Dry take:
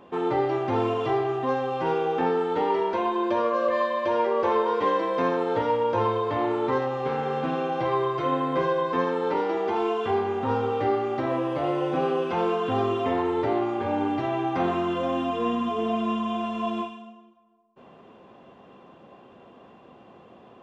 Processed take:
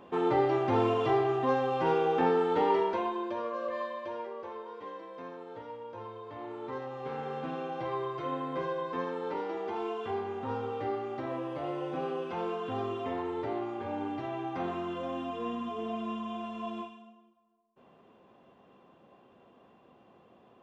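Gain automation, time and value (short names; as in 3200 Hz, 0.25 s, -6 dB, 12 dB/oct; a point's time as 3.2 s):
2.76 s -2 dB
3.33 s -11 dB
3.88 s -11 dB
4.53 s -19.5 dB
6.1 s -19.5 dB
7.19 s -9.5 dB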